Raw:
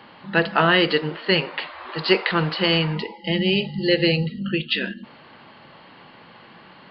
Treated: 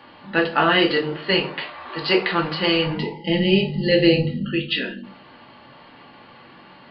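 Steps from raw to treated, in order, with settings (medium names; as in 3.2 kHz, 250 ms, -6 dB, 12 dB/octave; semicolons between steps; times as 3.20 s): 2.86–4.45 s: bass shelf 500 Hz +5.5 dB; reverberation, pre-delay 4 ms, DRR 1 dB; trim -2.5 dB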